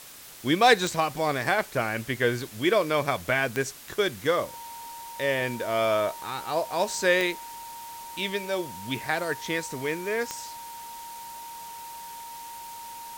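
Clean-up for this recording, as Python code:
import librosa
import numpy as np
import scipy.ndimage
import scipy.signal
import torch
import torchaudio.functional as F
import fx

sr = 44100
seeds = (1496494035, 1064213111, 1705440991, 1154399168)

y = fx.fix_declip(x, sr, threshold_db=-9.0)
y = fx.fix_declick_ar(y, sr, threshold=10.0)
y = fx.notch(y, sr, hz=930.0, q=30.0)
y = fx.noise_reduce(y, sr, print_start_s=0.0, print_end_s=0.5, reduce_db=30.0)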